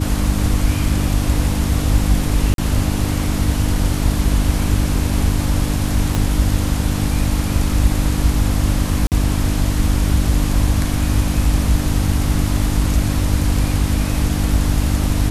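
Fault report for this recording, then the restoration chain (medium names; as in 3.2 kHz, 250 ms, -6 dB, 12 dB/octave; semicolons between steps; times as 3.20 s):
hum 50 Hz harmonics 6 -21 dBFS
2.54–2.58 s: dropout 42 ms
6.15 s: pop -5 dBFS
9.07–9.12 s: dropout 48 ms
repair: de-click; de-hum 50 Hz, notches 6; interpolate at 2.54 s, 42 ms; interpolate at 9.07 s, 48 ms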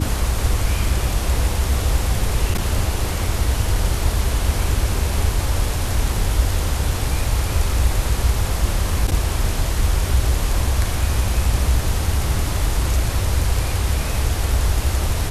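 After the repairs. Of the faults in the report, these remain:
6.15 s: pop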